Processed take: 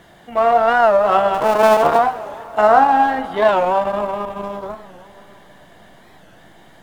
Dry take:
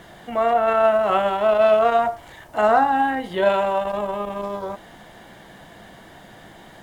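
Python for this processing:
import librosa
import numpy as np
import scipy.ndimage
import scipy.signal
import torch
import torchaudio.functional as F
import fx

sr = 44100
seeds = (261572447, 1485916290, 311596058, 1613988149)

p1 = fx.cycle_switch(x, sr, every=3, mode='muted', at=(1.34, 1.99))
p2 = fx.dynamic_eq(p1, sr, hz=940.0, q=0.88, threshold_db=-30.0, ratio=4.0, max_db=5)
p3 = fx.backlash(p2, sr, play_db=-18.0)
p4 = p2 + F.gain(torch.from_numpy(p3), -3.5).numpy()
p5 = fx.rev_plate(p4, sr, seeds[0], rt60_s=3.5, hf_ratio=0.8, predelay_ms=0, drr_db=12.5)
p6 = fx.record_warp(p5, sr, rpm=45.0, depth_cents=160.0)
y = F.gain(torch.from_numpy(p6), -3.0).numpy()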